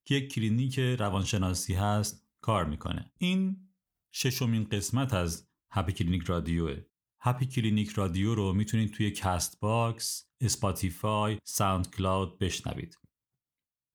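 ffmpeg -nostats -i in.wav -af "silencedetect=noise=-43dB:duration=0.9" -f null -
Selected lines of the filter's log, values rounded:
silence_start: 12.93
silence_end: 13.95 | silence_duration: 1.02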